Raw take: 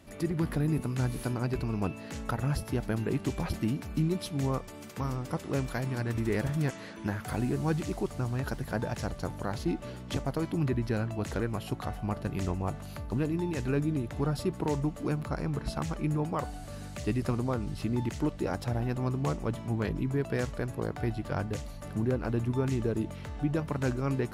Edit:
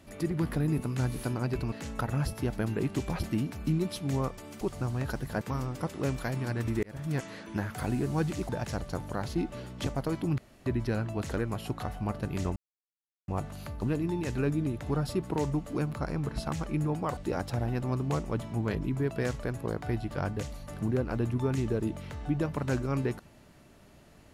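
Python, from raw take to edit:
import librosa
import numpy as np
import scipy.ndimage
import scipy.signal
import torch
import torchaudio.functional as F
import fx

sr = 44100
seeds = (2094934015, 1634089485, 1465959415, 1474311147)

y = fx.edit(x, sr, fx.cut(start_s=1.72, length_s=0.3),
    fx.fade_in_span(start_s=6.33, length_s=0.38),
    fx.move(start_s=7.99, length_s=0.8, to_s=4.91),
    fx.insert_room_tone(at_s=10.68, length_s=0.28),
    fx.insert_silence(at_s=12.58, length_s=0.72),
    fx.cut(start_s=16.47, length_s=1.84), tone=tone)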